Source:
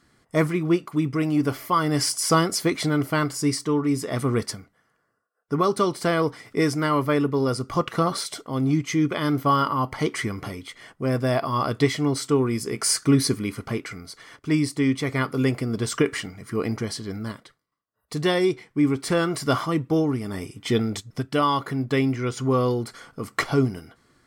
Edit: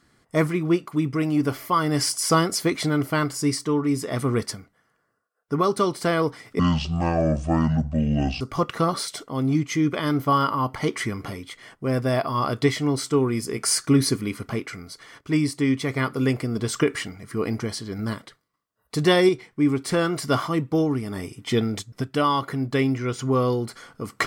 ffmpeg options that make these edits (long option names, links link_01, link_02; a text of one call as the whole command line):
ffmpeg -i in.wav -filter_complex "[0:a]asplit=5[link_01][link_02][link_03][link_04][link_05];[link_01]atrim=end=6.594[link_06];[link_02]atrim=start=6.59:end=7.59,asetpts=PTS-STARTPTS,asetrate=24255,aresample=44100[link_07];[link_03]atrim=start=7.586:end=17.172[link_08];[link_04]atrim=start=17.168:end=18.472,asetpts=PTS-STARTPTS,volume=4dB[link_09];[link_05]atrim=start=18.468[link_10];[link_06][link_07]acrossfade=duration=0.004:curve1=hsin:curve2=hsin[link_11];[link_11][link_08]acrossfade=duration=0.004:curve1=hsin:curve2=hsin[link_12];[link_12][link_09]acrossfade=duration=0.004:curve1=hsin:curve2=hsin[link_13];[link_13][link_10]acrossfade=duration=0.004:curve1=hsin:curve2=hsin" out.wav